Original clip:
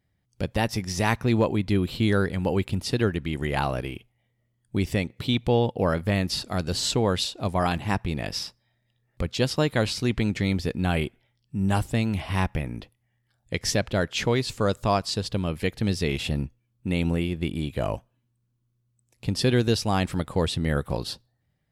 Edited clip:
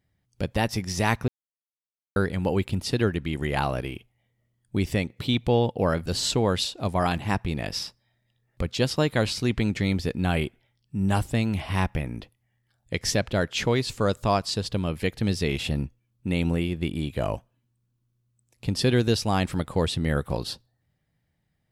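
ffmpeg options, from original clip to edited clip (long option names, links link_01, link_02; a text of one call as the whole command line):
ffmpeg -i in.wav -filter_complex "[0:a]asplit=4[link_01][link_02][link_03][link_04];[link_01]atrim=end=1.28,asetpts=PTS-STARTPTS,afade=type=out:start_time=1.276:duration=0.004:curve=hsin[link_05];[link_02]atrim=start=1.28:end=2.16,asetpts=PTS-STARTPTS,volume=0[link_06];[link_03]atrim=start=2.16:end=6.062,asetpts=PTS-STARTPTS,afade=type=in:duration=0.004:curve=hsin[link_07];[link_04]atrim=start=6.658[link_08];[link_05][link_06][link_07]concat=n=3:v=0:a=1[link_09];[link_09][link_08]acrossfade=duration=0.004:curve1=hsin:curve2=hsin" out.wav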